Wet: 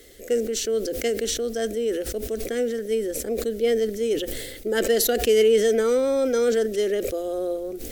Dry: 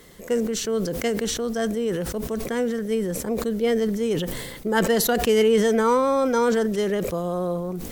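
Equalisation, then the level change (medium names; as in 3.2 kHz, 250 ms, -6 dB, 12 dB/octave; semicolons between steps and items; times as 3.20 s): static phaser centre 410 Hz, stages 4; +1.5 dB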